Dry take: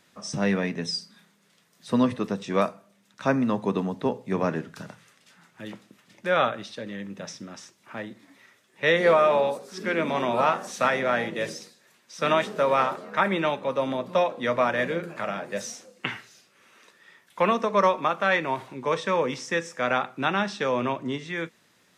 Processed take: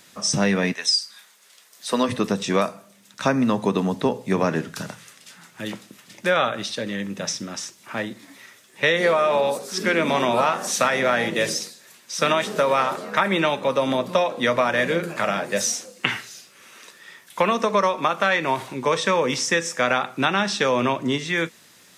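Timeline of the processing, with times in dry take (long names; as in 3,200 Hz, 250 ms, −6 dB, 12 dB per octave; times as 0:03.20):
0:00.72–0:02.08: high-pass filter 1,100 Hz → 350 Hz
whole clip: high-shelf EQ 3,800 Hz +9.5 dB; downward compressor, threshold −23 dBFS; level +7 dB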